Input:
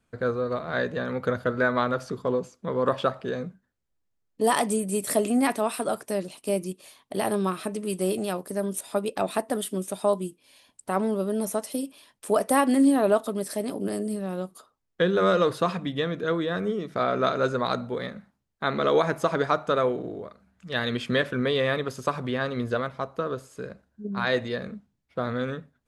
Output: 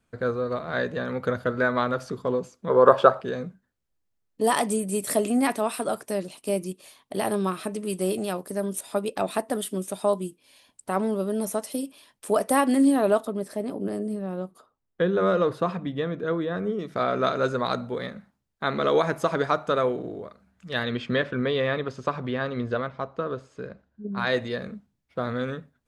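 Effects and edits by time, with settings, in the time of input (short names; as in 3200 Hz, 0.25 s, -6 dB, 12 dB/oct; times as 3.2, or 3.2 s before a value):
2.7–3.21 spectral gain 350–1700 Hz +9 dB
13.25–16.79 high shelf 2500 Hz -11.5 dB
20.83–24.18 air absorption 120 m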